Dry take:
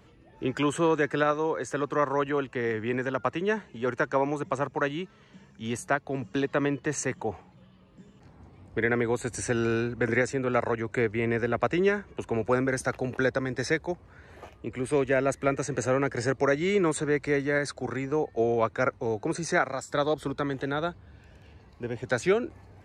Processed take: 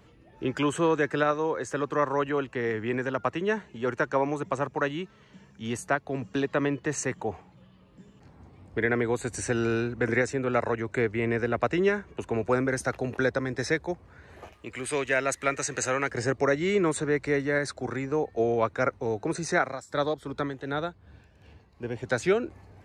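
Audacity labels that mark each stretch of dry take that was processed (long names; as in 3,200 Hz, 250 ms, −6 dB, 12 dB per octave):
14.530000	16.110000	tilt shelving filter lows −7.5 dB, about 900 Hz
19.660000	21.890000	amplitude tremolo 2.7 Hz, depth 58%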